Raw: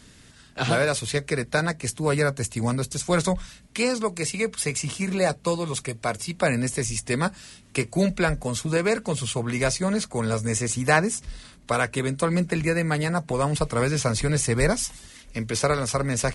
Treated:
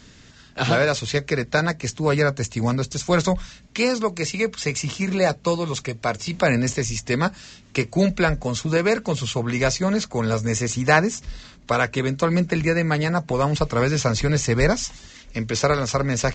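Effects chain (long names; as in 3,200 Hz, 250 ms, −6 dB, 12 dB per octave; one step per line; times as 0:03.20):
downsampling to 16,000 Hz
0:06.26–0:06.73: transient designer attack 0 dB, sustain +7 dB
level +3 dB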